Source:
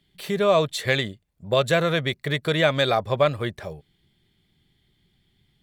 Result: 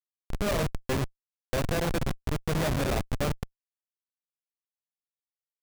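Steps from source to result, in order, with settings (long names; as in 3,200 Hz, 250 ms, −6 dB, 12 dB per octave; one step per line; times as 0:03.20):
reverb whose tail is shaped and stops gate 280 ms falling, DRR 3.5 dB
comparator with hysteresis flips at −16 dBFS
level −3 dB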